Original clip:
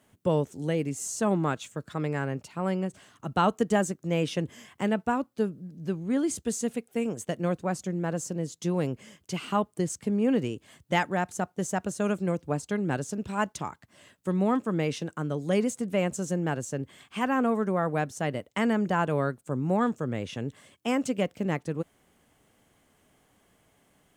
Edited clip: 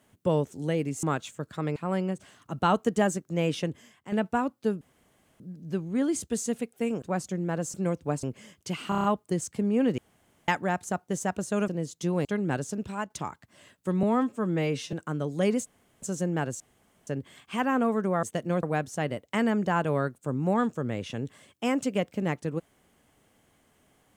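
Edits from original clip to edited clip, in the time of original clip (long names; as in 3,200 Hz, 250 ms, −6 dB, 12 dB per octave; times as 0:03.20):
0:01.03–0:01.40: remove
0:02.13–0:02.50: remove
0:04.36–0:04.86: fade out quadratic, to −11 dB
0:05.55: splice in room tone 0.59 s
0:07.17–0:07.57: move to 0:17.86
0:08.29–0:08.86: swap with 0:12.16–0:12.65
0:09.52: stutter 0.03 s, 6 plays
0:10.46–0:10.96: fill with room tone
0:13.23–0:13.50: fade out, to −10.5 dB
0:14.43–0:15.03: time-stretch 1.5×
0:15.76–0:16.12: fill with room tone
0:16.70: splice in room tone 0.47 s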